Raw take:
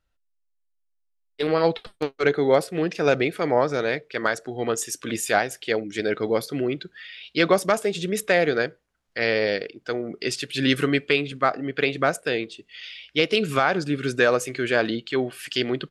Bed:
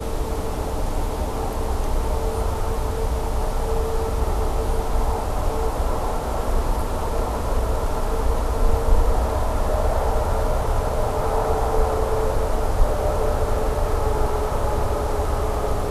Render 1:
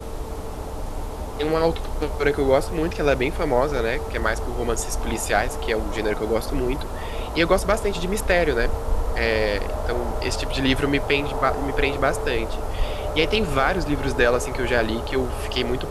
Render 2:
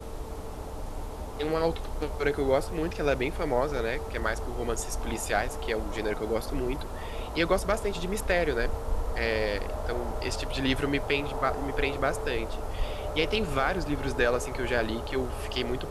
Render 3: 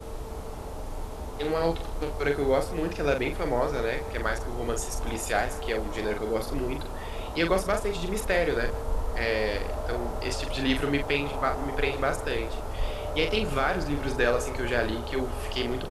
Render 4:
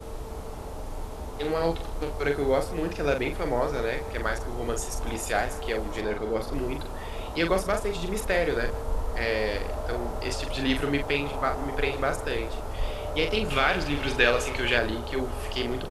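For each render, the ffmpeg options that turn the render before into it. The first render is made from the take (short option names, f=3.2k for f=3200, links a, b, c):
-filter_complex "[1:a]volume=-6dB[a];[0:a][a]amix=inputs=2:normalize=0"
-af "volume=-6.5dB"
-filter_complex "[0:a]asplit=2[a][b];[b]adelay=42,volume=-6.5dB[c];[a][c]amix=inputs=2:normalize=0,aecho=1:1:155:0.0891"
-filter_complex "[0:a]asettb=1/sr,asplit=3[a][b][c];[a]atrim=end=6.014[d];[b]atrim=start=6.01:end=6.53,asetpts=PTS-STARTPTS,afade=t=in:d=0.004:c=qsin,afade=t=out:st=0.516:d=0.004:c=qsin,highshelf=f=6.3k:g=-8[e];[c]atrim=start=6.526[f];[d][e]acrossfade=d=0.004:c1=hsin:c2=qsin[g];[g][f]acrossfade=d=0.004:c1=qsin:c2=hsin,asettb=1/sr,asplit=3[h][i][j];[h]atrim=end=13.504[k];[i]atrim=start=13.5:end=14.79,asetpts=PTS-STARTPTS,afade=t=in:d=0.004:c=qsin,afade=t=out:st=1.286:d=0.004:c=qsin,equalizer=f=2.9k:w=1.1:g=12[l];[j]atrim=start=14.786[m];[k][l]acrossfade=d=0.004:c1=hsin:c2=qsin[n];[n][m]acrossfade=d=0.004:c1=qsin:c2=hsin"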